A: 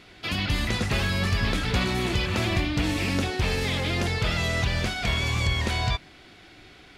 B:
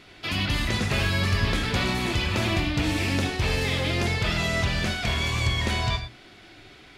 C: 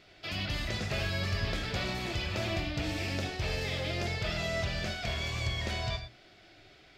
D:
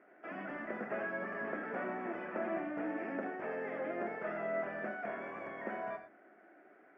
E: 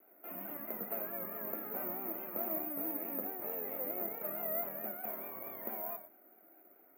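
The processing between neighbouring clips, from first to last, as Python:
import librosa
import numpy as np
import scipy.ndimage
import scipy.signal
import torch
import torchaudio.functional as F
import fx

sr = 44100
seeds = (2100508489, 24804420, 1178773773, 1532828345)

y1 = fx.hum_notches(x, sr, base_hz=60, count=2)
y1 = fx.rev_gated(y1, sr, seeds[0], gate_ms=130, shape='flat', drr_db=6.0)
y2 = fx.graphic_eq_31(y1, sr, hz=(250, 630, 1000, 5000, 10000), db=(-6, 7, -5, 4, -9))
y2 = F.gain(torch.from_numpy(y2), -8.5).numpy()
y3 = scipy.signal.sosfilt(scipy.signal.ellip(3, 1.0, 40, [230.0, 1700.0], 'bandpass', fs=sr, output='sos'), y2)
y4 = fx.peak_eq(y3, sr, hz=1700.0, db=-11.5, octaves=0.43)
y4 = fx.vibrato(y4, sr, rate_hz=4.6, depth_cents=84.0)
y4 = (np.kron(y4[::3], np.eye(3)[0]) * 3)[:len(y4)]
y4 = F.gain(torch.from_numpy(y4), -4.5).numpy()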